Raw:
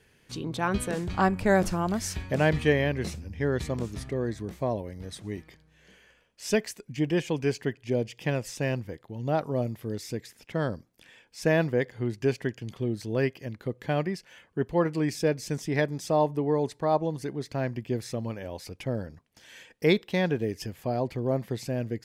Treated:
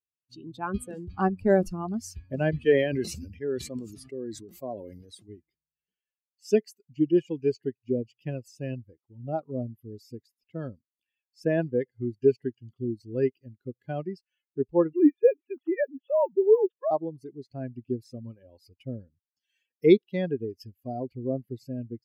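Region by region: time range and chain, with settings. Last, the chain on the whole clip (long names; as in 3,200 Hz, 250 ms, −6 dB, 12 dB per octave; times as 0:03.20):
0:02.65–0:05.29: high-pass filter 210 Hz 6 dB per octave + high-shelf EQ 3,800 Hz +4 dB + level that may fall only so fast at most 23 dB per second
0:14.93–0:16.91: three sine waves on the formant tracks + noise that follows the level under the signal 33 dB + one half of a high-frequency compander encoder only
whole clip: spectral dynamics exaggerated over time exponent 2; parametric band 360 Hz +14.5 dB 1.5 octaves; level −4 dB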